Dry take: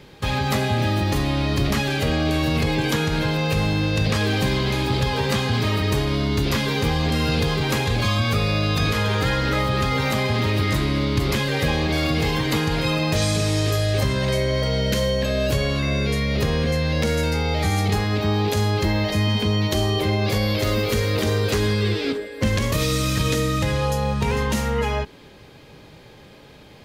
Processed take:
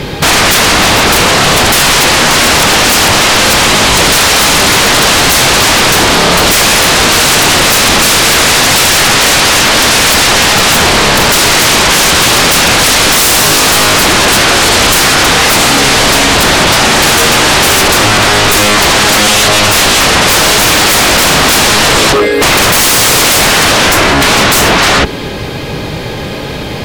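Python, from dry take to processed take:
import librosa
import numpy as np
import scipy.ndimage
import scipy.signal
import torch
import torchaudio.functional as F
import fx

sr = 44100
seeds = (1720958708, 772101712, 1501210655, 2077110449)

y = fx.fold_sine(x, sr, drive_db=19, ceiling_db=-9.0)
y = F.gain(torch.from_numpy(y), 5.0).numpy()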